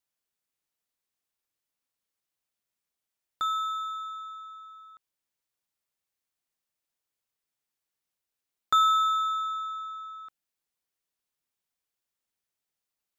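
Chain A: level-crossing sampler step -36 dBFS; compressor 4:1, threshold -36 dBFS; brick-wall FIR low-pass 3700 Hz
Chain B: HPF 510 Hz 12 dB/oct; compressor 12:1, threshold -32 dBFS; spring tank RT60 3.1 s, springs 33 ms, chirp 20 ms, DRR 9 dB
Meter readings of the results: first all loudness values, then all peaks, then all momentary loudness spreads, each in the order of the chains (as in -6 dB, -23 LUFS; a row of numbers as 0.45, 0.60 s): -38.0, -35.5 LUFS; -19.5, -16.0 dBFS; 10, 13 LU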